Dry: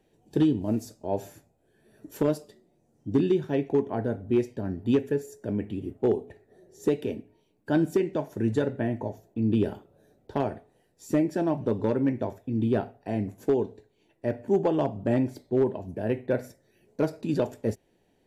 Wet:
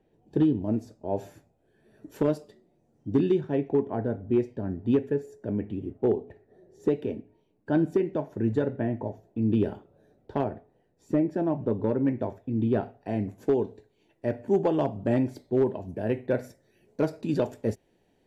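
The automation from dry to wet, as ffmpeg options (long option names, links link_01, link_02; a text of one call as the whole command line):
ffmpeg -i in.wav -af "asetnsamples=nb_out_samples=441:pad=0,asendcmd='1.16 lowpass f 3500;3.41 lowpass f 1600;9.25 lowpass f 2600;10.44 lowpass f 1100;12.05 lowpass f 2300;12.83 lowpass f 4600;13.67 lowpass f 8400',lowpass=frequency=1400:poles=1" out.wav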